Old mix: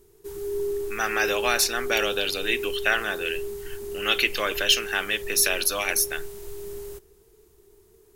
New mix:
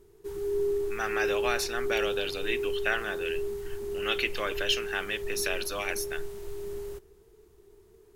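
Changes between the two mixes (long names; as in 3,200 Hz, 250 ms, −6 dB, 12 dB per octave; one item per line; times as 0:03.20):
speech −5.0 dB
master: add high-shelf EQ 5,400 Hz −10.5 dB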